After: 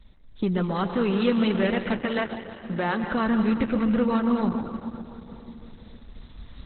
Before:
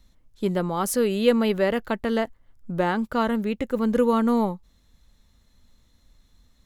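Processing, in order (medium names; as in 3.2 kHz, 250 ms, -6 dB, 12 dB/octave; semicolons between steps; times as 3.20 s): recorder AGC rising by 5.3 dB/s; 1.97–3.04 s: high-pass 380 Hz 6 dB/octave; dynamic bell 540 Hz, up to -7 dB, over -34 dBFS, Q 0.87; in parallel at -2 dB: compression 12:1, threshold -37 dBFS, peak gain reduction 19 dB; on the sum: saturation -14 dBFS, distortion -23 dB; two-band feedback delay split 1 kHz, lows 138 ms, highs 197 ms, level -8.5 dB; reverberation RT60 3.6 s, pre-delay 98 ms, DRR 10 dB; resampled via 22.05 kHz; trim +1.5 dB; Opus 8 kbps 48 kHz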